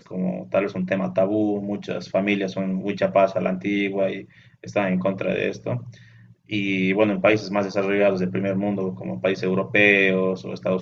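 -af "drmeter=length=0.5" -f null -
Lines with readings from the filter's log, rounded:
Channel 1: DR: 12.7
Overall DR: 12.7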